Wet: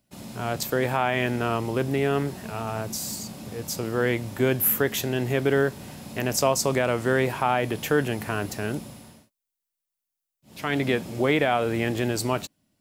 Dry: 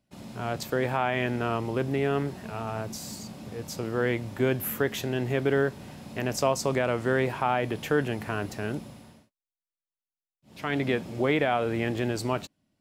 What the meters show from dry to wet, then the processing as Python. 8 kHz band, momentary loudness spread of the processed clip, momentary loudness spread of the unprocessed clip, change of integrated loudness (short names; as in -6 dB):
+8.5 dB, 11 LU, 11 LU, +3.0 dB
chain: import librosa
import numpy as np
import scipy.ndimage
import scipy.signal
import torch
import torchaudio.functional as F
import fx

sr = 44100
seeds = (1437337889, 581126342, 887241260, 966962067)

y = fx.high_shelf(x, sr, hz=6700.0, db=10.5)
y = F.gain(torch.from_numpy(y), 2.5).numpy()